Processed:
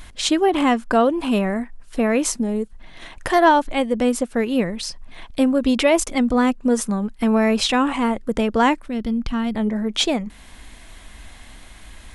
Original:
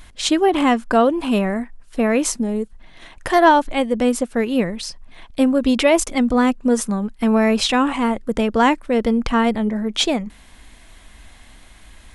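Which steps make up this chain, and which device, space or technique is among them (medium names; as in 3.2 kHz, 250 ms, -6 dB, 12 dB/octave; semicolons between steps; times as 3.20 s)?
parallel compression (in parallel at -1 dB: compression, threshold -31 dBFS, peak gain reduction 21 dB); 8.88–9.55 s: on the sum: ten-band graphic EQ 500 Hz -12 dB, 1 kHz -7 dB, 2 kHz -7 dB, 8 kHz -9 dB; trim -2.5 dB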